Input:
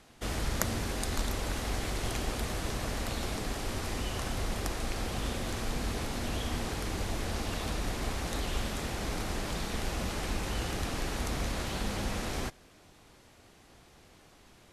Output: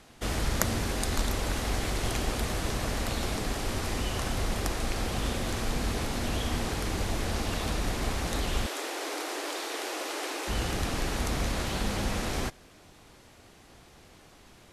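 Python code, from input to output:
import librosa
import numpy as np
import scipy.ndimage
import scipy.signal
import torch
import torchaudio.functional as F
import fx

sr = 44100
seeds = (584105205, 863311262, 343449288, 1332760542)

y = fx.steep_highpass(x, sr, hz=290.0, slope=72, at=(8.66, 10.48))
y = F.gain(torch.from_numpy(y), 3.5).numpy()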